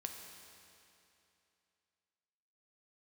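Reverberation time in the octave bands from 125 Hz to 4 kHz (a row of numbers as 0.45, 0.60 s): 2.8, 2.8, 2.8, 2.8, 2.8, 2.6 s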